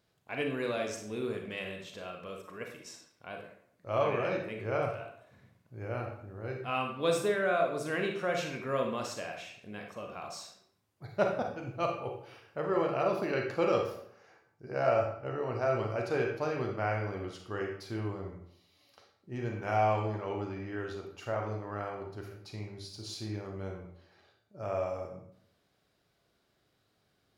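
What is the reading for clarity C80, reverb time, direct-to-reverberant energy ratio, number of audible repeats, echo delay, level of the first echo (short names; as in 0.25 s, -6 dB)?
8.5 dB, 0.70 s, 2.0 dB, none, none, none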